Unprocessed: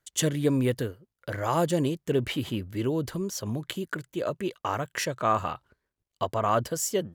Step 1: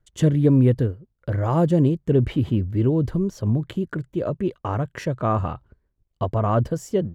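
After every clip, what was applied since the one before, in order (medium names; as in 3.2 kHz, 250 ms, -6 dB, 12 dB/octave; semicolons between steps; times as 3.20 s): tilt EQ -4 dB/octave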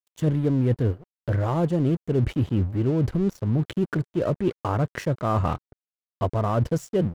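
reverse; compression 5:1, threshold -25 dBFS, peak gain reduction 12 dB; reverse; crossover distortion -45.5 dBFS; trim +6 dB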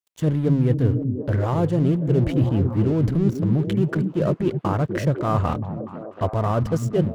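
repeats whose band climbs or falls 244 ms, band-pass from 160 Hz, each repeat 0.7 oct, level -1.5 dB; trim +1.5 dB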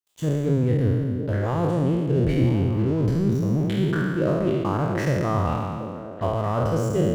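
spectral sustain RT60 1.69 s; trim -4.5 dB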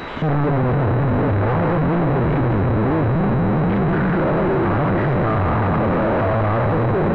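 one-bit comparator; class-D stage that switches slowly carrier 3.9 kHz; trim +5.5 dB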